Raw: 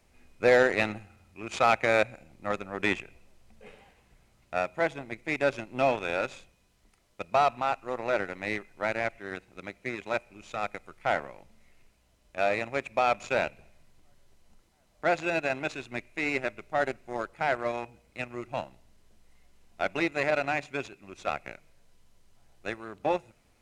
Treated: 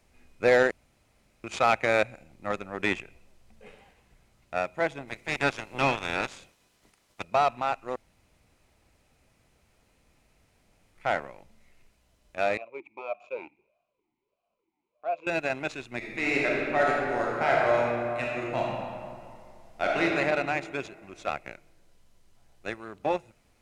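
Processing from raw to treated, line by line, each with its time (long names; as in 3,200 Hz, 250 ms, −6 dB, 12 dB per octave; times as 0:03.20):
0:00.71–0:01.44: fill with room tone
0:05.07–0:07.22: ceiling on every frequency bin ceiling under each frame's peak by 16 dB
0:07.96–0:10.95: fill with room tone
0:12.57–0:15.27: formant filter swept between two vowels a-u 1.6 Hz
0:15.97–0:20.03: thrown reverb, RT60 2.3 s, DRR −4 dB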